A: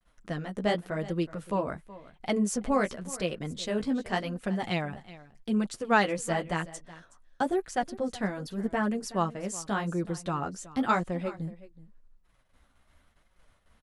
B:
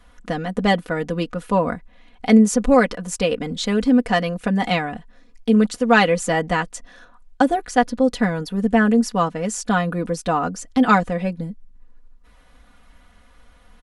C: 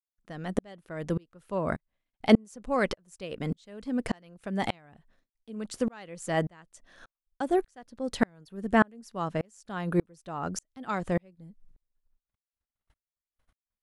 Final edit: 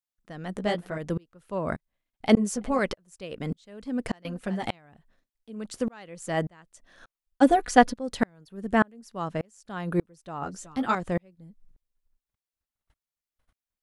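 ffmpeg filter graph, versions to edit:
ffmpeg -i take0.wav -i take1.wav -i take2.wav -filter_complex "[0:a]asplit=4[link_01][link_02][link_03][link_04];[2:a]asplit=6[link_05][link_06][link_07][link_08][link_09][link_10];[link_05]atrim=end=0.572[link_11];[link_01]atrim=start=0.568:end=0.982[link_12];[link_06]atrim=start=0.978:end=2.372[link_13];[link_02]atrim=start=2.368:end=2.792[link_14];[link_07]atrim=start=2.788:end=4.252[link_15];[link_03]atrim=start=4.248:end=4.652[link_16];[link_08]atrim=start=4.648:end=7.43[link_17];[1:a]atrim=start=7.41:end=7.94[link_18];[link_09]atrim=start=7.92:end=10.422[link_19];[link_04]atrim=start=10.418:end=10.952[link_20];[link_10]atrim=start=10.948[link_21];[link_11][link_12]acrossfade=duration=0.004:curve1=hsin:curve2=hsin[link_22];[link_22][link_13]acrossfade=duration=0.004:curve1=hsin:curve2=hsin[link_23];[link_23][link_14]acrossfade=duration=0.004:curve1=hsin:curve2=hsin[link_24];[link_24][link_15]acrossfade=duration=0.004:curve1=hsin:curve2=hsin[link_25];[link_25][link_16]acrossfade=duration=0.004:curve1=hsin:curve2=hsin[link_26];[link_26][link_17]acrossfade=duration=0.004:curve1=hsin:curve2=hsin[link_27];[link_27][link_18]acrossfade=duration=0.02:curve1=tri:curve2=tri[link_28];[link_28][link_19]acrossfade=duration=0.02:curve1=tri:curve2=tri[link_29];[link_29][link_20]acrossfade=duration=0.004:curve1=hsin:curve2=hsin[link_30];[link_30][link_21]acrossfade=duration=0.004:curve1=hsin:curve2=hsin" out.wav

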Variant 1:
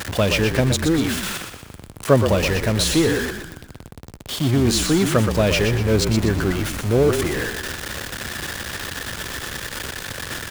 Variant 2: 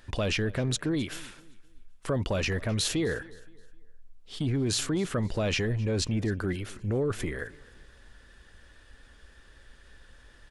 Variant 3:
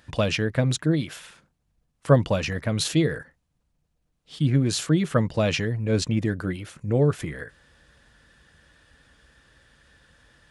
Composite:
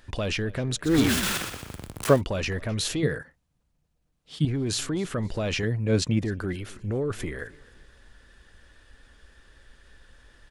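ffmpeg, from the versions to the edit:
ffmpeg -i take0.wav -i take1.wav -i take2.wav -filter_complex "[2:a]asplit=2[link_01][link_02];[1:a]asplit=4[link_03][link_04][link_05][link_06];[link_03]atrim=end=0.99[link_07];[0:a]atrim=start=0.83:end=2.22[link_08];[link_04]atrim=start=2.06:end=3.032[link_09];[link_01]atrim=start=3.028:end=4.452[link_10];[link_05]atrim=start=4.448:end=5.632[link_11];[link_02]atrim=start=5.628:end=6.232[link_12];[link_06]atrim=start=6.228[link_13];[link_07][link_08]acrossfade=duration=0.16:curve1=tri:curve2=tri[link_14];[link_14][link_09]acrossfade=duration=0.16:curve1=tri:curve2=tri[link_15];[link_15][link_10]acrossfade=duration=0.004:curve1=hsin:curve2=hsin[link_16];[link_16][link_11]acrossfade=duration=0.004:curve1=hsin:curve2=hsin[link_17];[link_17][link_12]acrossfade=duration=0.004:curve1=hsin:curve2=hsin[link_18];[link_18][link_13]acrossfade=duration=0.004:curve1=hsin:curve2=hsin" out.wav

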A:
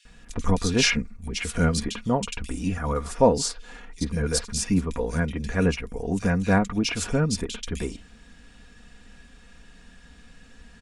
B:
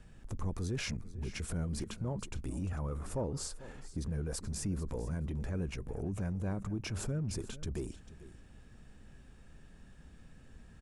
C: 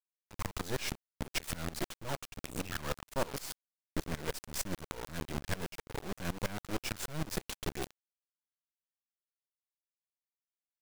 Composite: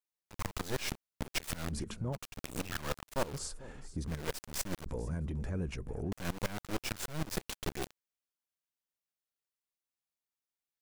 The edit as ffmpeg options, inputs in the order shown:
ffmpeg -i take0.wav -i take1.wav -i take2.wav -filter_complex "[1:a]asplit=3[link_01][link_02][link_03];[2:a]asplit=4[link_04][link_05][link_06][link_07];[link_04]atrim=end=1.73[link_08];[link_01]atrim=start=1.67:end=2.18[link_09];[link_05]atrim=start=2.12:end=3.45[link_10];[link_02]atrim=start=3.21:end=4.25[link_11];[link_06]atrim=start=4.01:end=4.862[link_12];[link_03]atrim=start=4.858:end=6.122[link_13];[link_07]atrim=start=6.118[link_14];[link_08][link_09]acrossfade=duration=0.06:curve1=tri:curve2=tri[link_15];[link_15][link_10]acrossfade=duration=0.06:curve1=tri:curve2=tri[link_16];[link_16][link_11]acrossfade=duration=0.24:curve1=tri:curve2=tri[link_17];[link_17][link_12]acrossfade=duration=0.24:curve1=tri:curve2=tri[link_18];[link_18][link_13]acrossfade=duration=0.004:curve1=hsin:curve2=hsin[link_19];[link_19][link_14]acrossfade=duration=0.004:curve1=hsin:curve2=hsin" out.wav

